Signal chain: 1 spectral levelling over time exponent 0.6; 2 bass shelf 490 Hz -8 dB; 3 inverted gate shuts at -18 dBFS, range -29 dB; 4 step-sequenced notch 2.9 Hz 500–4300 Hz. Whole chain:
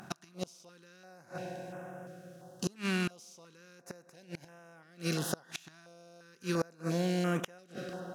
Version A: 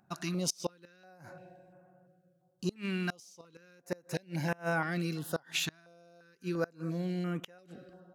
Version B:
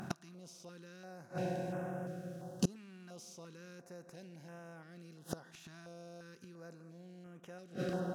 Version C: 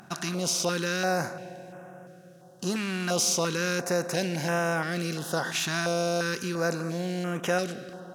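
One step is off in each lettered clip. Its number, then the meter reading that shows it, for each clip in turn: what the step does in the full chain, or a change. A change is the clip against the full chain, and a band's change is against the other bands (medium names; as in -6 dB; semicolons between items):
1, 250 Hz band -2.0 dB; 2, 4 kHz band -5.0 dB; 3, momentary loudness spread change -13 LU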